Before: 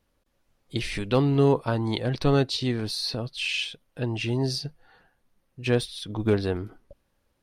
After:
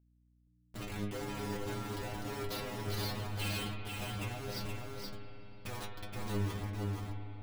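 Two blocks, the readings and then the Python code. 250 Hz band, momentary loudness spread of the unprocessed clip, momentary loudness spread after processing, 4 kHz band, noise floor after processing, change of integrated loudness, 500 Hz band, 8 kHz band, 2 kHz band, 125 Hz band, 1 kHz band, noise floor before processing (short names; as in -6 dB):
-14.5 dB, 11 LU, 9 LU, -12.5 dB, -69 dBFS, -13.5 dB, -16.0 dB, -6.5 dB, -9.5 dB, -11.5 dB, -8.5 dB, -73 dBFS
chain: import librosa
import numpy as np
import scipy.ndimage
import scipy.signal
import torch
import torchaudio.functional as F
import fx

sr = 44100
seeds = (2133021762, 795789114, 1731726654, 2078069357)

p1 = fx.schmitt(x, sr, flips_db=-28.5)
p2 = fx.stiff_resonator(p1, sr, f0_hz=100.0, decay_s=0.39, stiffness=0.002)
p3 = fx.rev_spring(p2, sr, rt60_s=3.7, pass_ms=(34, 59), chirp_ms=75, drr_db=5.0)
p4 = fx.add_hum(p3, sr, base_hz=60, snr_db=28)
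p5 = p4 + fx.echo_single(p4, sr, ms=473, db=-4.0, dry=0)
y = F.gain(torch.from_numpy(p5), -1.0).numpy()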